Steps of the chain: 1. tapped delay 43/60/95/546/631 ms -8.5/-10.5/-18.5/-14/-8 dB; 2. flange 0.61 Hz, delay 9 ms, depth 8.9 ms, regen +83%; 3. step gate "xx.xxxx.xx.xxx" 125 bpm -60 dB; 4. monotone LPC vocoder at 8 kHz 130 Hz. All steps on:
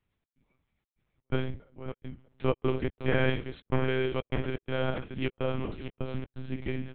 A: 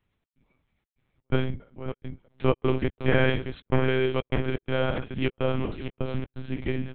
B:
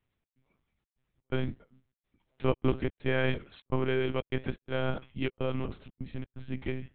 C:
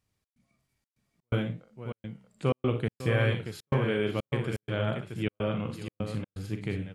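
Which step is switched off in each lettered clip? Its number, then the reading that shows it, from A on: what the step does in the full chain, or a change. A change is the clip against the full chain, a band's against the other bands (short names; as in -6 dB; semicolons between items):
2, loudness change +4.5 LU; 1, crest factor change +2.0 dB; 4, 125 Hz band +3.5 dB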